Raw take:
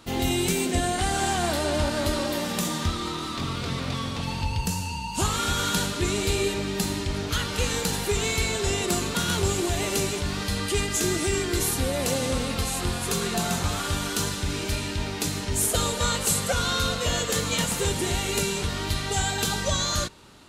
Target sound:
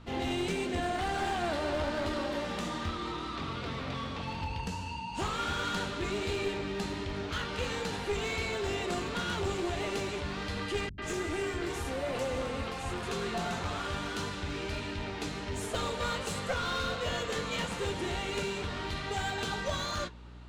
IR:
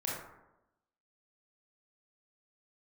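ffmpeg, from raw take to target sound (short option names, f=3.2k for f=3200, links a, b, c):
-filter_complex "[0:a]lowpass=7.6k,bass=f=250:g=-6,treble=f=4k:g=-11,aeval=exprs='val(0)+0.00631*(sin(2*PI*60*n/s)+sin(2*PI*2*60*n/s)/2+sin(2*PI*3*60*n/s)/3+sin(2*PI*4*60*n/s)/4+sin(2*PI*5*60*n/s)/5)':c=same,flanger=delay=9:depth=6.4:regen=-57:speed=1.4:shape=sinusoidal,aeval=exprs='clip(val(0),-1,0.0316)':c=same,asettb=1/sr,asplit=3[a][b][c];[a]atrim=end=10.894[d];[b]atrim=start=10.89:end=13.03,asetpts=PTS-STARTPTS,afade=t=in:d=0.004:c=qsin,afade=t=out:st=2.136:d=0.004:c=qsin,acrossover=split=180|4100[e][f][g];[f]adelay=90[h];[g]adelay=130[i];[e][h][i]amix=inputs=3:normalize=0,atrim=end_sample=94374[j];[c]atrim=start=13.026[k];[d][j]acrossfade=d=0.004:c1=hsin:c2=qsin[l];[l][k]acrossfade=d=0.004:c1=qsin:c2=hsin"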